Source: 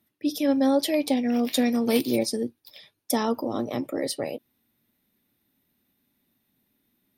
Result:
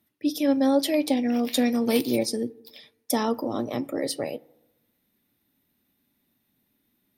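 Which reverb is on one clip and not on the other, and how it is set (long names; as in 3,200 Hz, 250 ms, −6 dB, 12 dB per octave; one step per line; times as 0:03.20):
feedback delay network reverb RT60 1 s, low-frequency decay 1×, high-frequency decay 0.35×, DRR 19.5 dB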